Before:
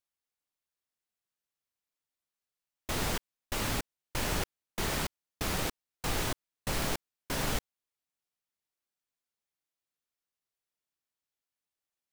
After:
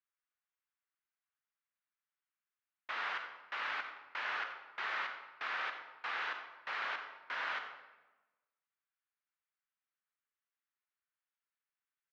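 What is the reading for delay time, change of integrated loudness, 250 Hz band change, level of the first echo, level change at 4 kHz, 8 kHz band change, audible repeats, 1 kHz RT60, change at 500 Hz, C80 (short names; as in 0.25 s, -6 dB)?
87 ms, -5.0 dB, -26.5 dB, -13.0 dB, -8.5 dB, under -25 dB, 1, 1.1 s, -14.0 dB, 7.5 dB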